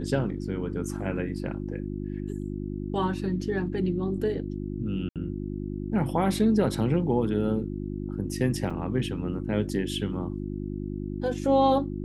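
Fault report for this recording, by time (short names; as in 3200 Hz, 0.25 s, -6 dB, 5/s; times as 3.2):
hum 50 Hz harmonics 7 -33 dBFS
5.09–5.16 gap 67 ms
8.7 gap 4.9 ms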